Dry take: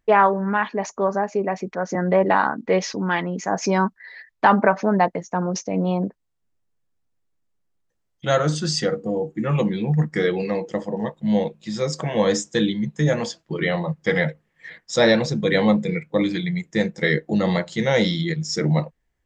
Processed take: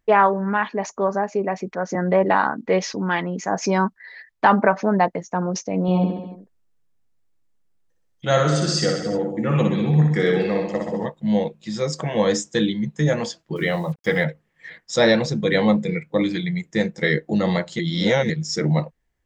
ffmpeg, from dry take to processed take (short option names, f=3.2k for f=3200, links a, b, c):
-filter_complex "[0:a]asettb=1/sr,asplit=3[a][b][c];[a]atrim=end=5.824[d];[b]atrim=start=5.82:end=11.06,asetpts=PTS-STARTPTS,afade=t=in:d=0.004:c=qsin,afade=t=out:st=5.236:d=0.004:c=qsin,aecho=1:1:60|126|198.6|278.5|366.3:0.631|0.398|0.251|0.158|0.1,atrim=end_sample=231084[e];[c]atrim=start=11.056[f];[d][e]acrossfade=d=0.004:c1=hsin:c2=qsin[g];[g][f]acrossfade=d=0.004:c1=qsin:c2=hsin,asettb=1/sr,asplit=3[h][i][j];[h]atrim=end=13.564[k];[i]atrim=start=13.56:end=14.24,asetpts=PTS-STARTPTS,afade=t=in:d=0.004:c=qsin,afade=t=out:st=0.676:d=0.004:c=qsin,acrusher=bits=7:mix=0:aa=0.5[l];[j]atrim=start=14.236[m];[k][l]acrossfade=d=0.004:c1=hsin:c2=qsin[n];[n][m]acrossfade=d=0.004:c1=qsin:c2=hsin,asplit=3[o][p][q];[o]atrim=end=17.792[r];[p]atrim=start=17.788:end=18.302,asetpts=PTS-STARTPTS,areverse[s];[q]atrim=start=18.298[t];[r][s]acrossfade=d=0.004:c1=hsin:c2=hsin[u];[u][t]acrossfade=d=0.004:c1=hsin:c2=hsin"